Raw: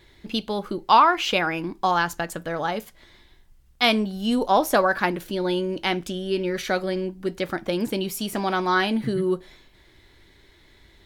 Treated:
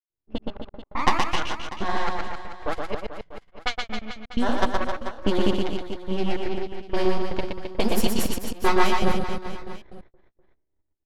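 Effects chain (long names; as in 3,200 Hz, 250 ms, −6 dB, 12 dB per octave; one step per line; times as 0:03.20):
noise gate −46 dBFS, range −37 dB
half-wave rectification
downward compressor 16 to 1, threshold −28 dBFS, peak gain reduction 17 dB
transient designer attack +6 dB, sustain −2 dB
automatic gain control gain up to 16 dB
flanger 1.1 Hz, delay 7.8 ms, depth 8.6 ms, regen +45%
granular cloud 165 ms, grains 15 per second, spray 179 ms
gate pattern ".xxx.x..." 158 BPM −60 dB
low-pass that shuts in the quiet parts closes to 770 Hz, open at −22 dBFS
reverse bouncing-ball delay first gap 120 ms, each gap 1.2×, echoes 5
level +5 dB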